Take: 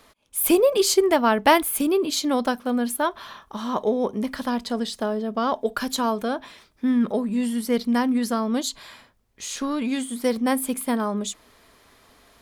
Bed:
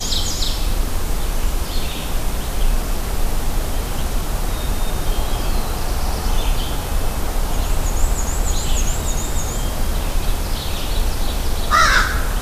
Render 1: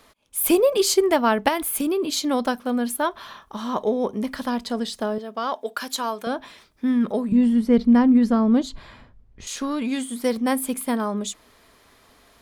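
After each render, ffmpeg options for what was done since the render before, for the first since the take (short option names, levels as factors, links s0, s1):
-filter_complex "[0:a]asettb=1/sr,asplit=3[s0][s1][s2];[s0]atrim=end=1.484[s3];[s1]atrim=start=1.48:end=2.18,asetpts=PTS-STARTPTS,afade=t=in:d=0.004:c=qsin,afade=t=out:st=0.696:d=0.004:c=qsin,acompressor=threshold=0.112:ratio=6:attack=3.2:release=140:knee=1:detection=peak[s4];[s2]atrim=start=2.176[s5];[s3][s4]acrossfade=d=0.004:c1=hsin:c2=qsin[s6];[s6][s5]acrossfade=d=0.004:c1=qsin:c2=hsin,asettb=1/sr,asplit=3[s7][s8][s9];[s7]atrim=end=5.184[s10];[s8]atrim=start=5.18:end=6.27,asetpts=PTS-STARTPTS,afade=t=in:d=0.004:c=qsin,afade=t=out:st=1.086:d=0.004:c=qsin,highpass=f=680:p=1[s11];[s9]atrim=start=6.266[s12];[s10][s11]acrossfade=d=0.004:c1=hsin:c2=qsin[s13];[s13][s12]acrossfade=d=0.004:c1=qsin:c2=hsin,asettb=1/sr,asplit=3[s14][s15][s16];[s14]atrim=end=7.324[s17];[s15]atrim=start=7.32:end=9.47,asetpts=PTS-STARTPTS,afade=t=in:d=0.004:c=qsin,afade=t=out:st=2.146:d=0.004:c=qsin,aemphasis=mode=reproduction:type=riaa[s18];[s16]atrim=start=9.466[s19];[s17][s18]acrossfade=d=0.004:c1=hsin:c2=qsin[s20];[s20][s19]acrossfade=d=0.004:c1=qsin:c2=hsin"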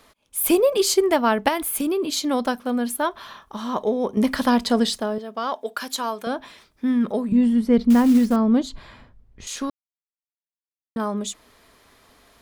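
-filter_complex "[0:a]asettb=1/sr,asplit=3[s0][s1][s2];[s0]atrim=end=7.904[s3];[s1]atrim=start=7.9:end=8.36,asetpts=PTS-STARTPTS,afade=t=in:d=0.004:c=qsin,afade=t=out:st=0.456:d=0.004:c=qsin,acrusher=bits=6:mode=log:mix=0:aa=0.000001[s4];[s2]atrim=start=8.356[s5];[s3][s4]acrossfade=d=0.004:c1=hsin:c2=qsin[s6];[s6][s5]acrossfade=d=0.004:c1=qsin:c2=hsin,asplit=5[s7][s8][s9][s10][s11];[s7]atrim=end=4.172[s12];[s8]atrim=start=4.168:end=4.982,asetpts=PTS-STARTPTS,volume=2.24[s13];[s9]atrim=start=4.978:end=9.7,asetpts=PTS-STARTPTS,afade=t=out:st=4.718:d=0.004:c=hsin[s14];[s10]atrim=start=9.7:end=10.96,asetpts=PTS-STARTPTS,volume=0[s15];[s11]atrim=start=10.96,asetpts=PTS-STARTPTS,afade=t=in:d=0.004:c=hsin[s16];[s12][s13]acrossfade=d=0.004:c1=hsin:c2=hsin[s17];[s14][s15][s16]concat=n=3:v=0:a=1[s18];[s17][s18]acrossfade=d=0.004:c1=hsin:c2=hsin"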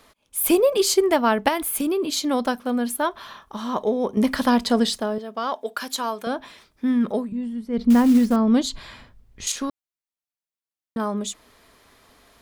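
-filter_complex "[0:a]asettb=1/sr,asplit=3[s0][s1][s2];[s0]atrim=end=8.474[s3];[s1]atrim=start=8.47:end=9.52,asetpts=PTS-STARTPTS,afade=t=in:d=0.004:c=qsin,afade=t=out:st=1.046:d=0.004:c=qsin,highshelf=f=2100:g=10[s4];[s2]atrim=start=9.516[s5];[s3][s4]acrossfade=d=0.004:c1=hsin:c2=qsin[s6];[s6][s5]acrossfade=d=0.004:c1=qsin:c2=hsin,asplit=3[s7][s8][s9];[s7]atrim=end=7.32,asetpts=PTS-STARTPTS,afade=t=out:st=7.18:d=0.14:silence=0.281838[s10];[s8]atrim=start=7.32:end=7.72,asetpts=PTS-STARTPTS,volume=0.282[s11];[s9]atrim=start=7.72,asetpts=PTS-STARTPTS,afade=t=in:d=0.14:silence=0.281838[s12];[s10][s11][s12]concat=n=3:v=0:a=1"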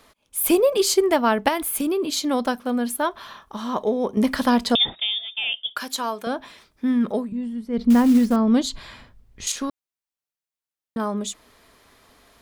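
-filter_complex "[0:a]asettb=1/sr,asplit=3[s0][s1][s2];[s0]atrim=end=4.754[s3];[s1]atrim=start=4.75:end=5.76,asetpts=PTS-STARTPTS,afade=t=in:d=0.004:c=qsin,afade=t=out:st=1.006:d=0.004:c=qsin,lowpass=f=3200:t=q:w=0.5098,lowpass=f=3200:t=q:w=0.6013,lowpass=f=3200:t=q:w=0.9,lowpass=f=3200:t=q:w=2.563,afreqshift=-3800[s4];[s2]atrim=start=5.756[s5];[s3][s4]acrossfade=d=0.004:c1=hsin:c2=qsin[s6];[s6][s5]acrossfade=d=0.004:c1=qsin:c2=hsin"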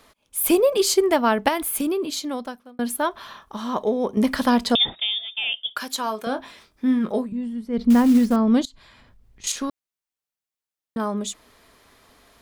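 -filter_complex "[0:a]asettb=1/sr,asplit=3[s0][s1][s2];[s0]atrim=end=6.044[s3];[s1]atrim=start=6.04:end=7.26,asetpts=PTS-STARTPTS,afade=t=in:d=0.004:c=qsin,afade=t=out:st=1.216:d=0.004:c=qsin,asplit=2[s4][s5];[s5]adelay=23,volume=0.355[s6];[s4][s6]amix=inputs=2:normalize=0,atrim=end_sample=53802[s7];[s2]atrim=start=7.256[s8];[s3][s7]acrossfade=d=0.004:c1=hsin:c2=qsin[s9];[s9][s8]acrossfade=d=0.004:c1=qsin:c2=hsin,asettb=1/sr,asplit=3[s10][s11][s12];[s10]atrim=end=8.654[s13];[s11]atrim=start=8.65:end=9.44,asetpts=PTS-STARTPTS,afade=t=in:d=0.004:c=qsin,afade=t=out:st=0.786:d=0.004:c=qsin,acompressor=threshold=0.00355:ratio=4:attack=3.2:release=140:knee=1:detection=peak[s14];[s12]atrim=start=9.436[s15];[s13][s14]acrossfade=d=0.004:c1=hsin:c2=qsin[s16];[s16][s15]acrossfade=d=0.004:c1=qsin:c2=hsin,asplit=2[s17][s18];[s17]atrim=end=2.79,asetpts=PTS-STARTPTS,afade=t=out:st=1.85:d=0.94[s19];[s18]atrim=start=2.79,asetpts=PTS-STARTPTS,afade=t=in:d=0.004:c=hsin[s20];[s19][s20]concat=n=2:v=0:a=1"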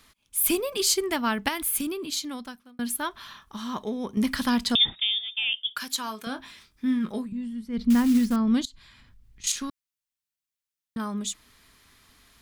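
-af "equalizer=f=570:t=o:w=1.7:g=-14"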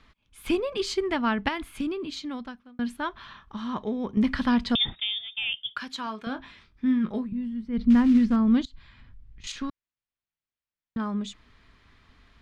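-af "lowpass=3000,lowshelf=f=130:g=7.5"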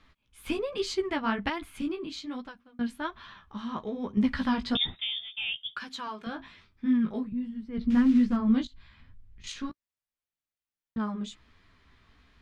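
-af "flanger=delay=9.6:depth=9.4:regen=-6:speed=1.2:shape=triangular"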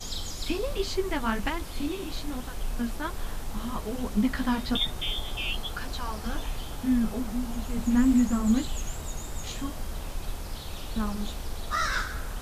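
-filter_complex "[1:a]volume=0.188[s0];[0:a][s0]amix=inputs=2:normalize=0"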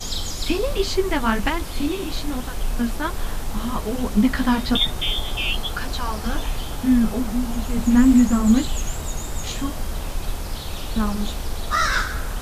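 -af "volume=2.37"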